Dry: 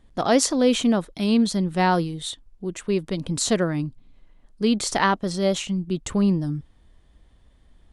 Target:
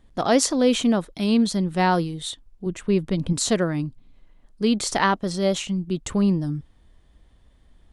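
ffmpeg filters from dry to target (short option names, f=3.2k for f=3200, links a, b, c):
-filter_complex "[0:a]asettb=1/sr,asplit=3[a][b][c];[a]atrim=end=2.664[d];[b]atrim=start=2.66:end=3.33,asetpts=PTS-STARTPTS,afade=t=in:d=0.004:c=qsin,afade=t=out:st=0.666:d=0.004:c=qsin,bass=f=250:g=6,treble=f=4k:g=-4[e];[c]atrim=start=3.326[f];[d][e]acrossfade=d=0.004:c1=hsin:c2=qsin[g];[g][f]acrossfade=d=0.004:c1=qsin:c2=hsin"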